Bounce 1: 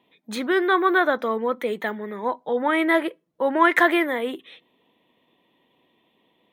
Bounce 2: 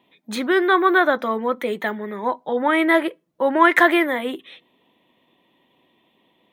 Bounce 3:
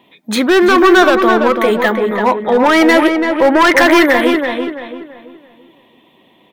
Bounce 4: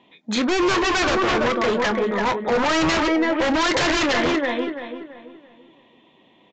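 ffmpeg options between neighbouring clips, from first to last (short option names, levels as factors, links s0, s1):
-af "bandreject=f=460:w=12,volume=1.41"
-filter_complex "[0:a]asplit=2[s0][s1];[s1]alimiter=limit=0.316:level=0:latency=1:release=12,volume=1.26[s2];[s0][s2]amix=inputs=2:normalize=0,asoftclip=type=hard:threshold=0.316,asplit=2[s3][s4];[s4]adelay=336,lowpass=f=2400:p=1,volume=0.562,asplit=2[s5][s6];[s6]adelay=336,lowpass=f=2400:p=1,volume=0.37,asplit=2[s7][s8];[s8]adelay=336,lowpass=f=2400:p=1,volume=0.37,asplit=2[s9][s10];[s10]adelay=336,lowpass=f=2400:p=1,volume=0.37,asplit=2[s11][s12];[s12]adelay=336,lowpass=f=2400:p=1,volume=0.37[s13];[s3][s5][s7][s9][s11][s13]amix=inputs=6:normalize=0,volume=1.58"
-filter_complex "[0:a]aeval=exprs='0.335*(abs(mod(val(0)/0.335+3,4)-2)-1)':c=same,asplit=2[s0][s1];[s1]adelay=25,volume=0.224[s2];[s0][s2]amix=inputs=2:normalize=0,aresample=16000,aresample=44100,volume=0.531"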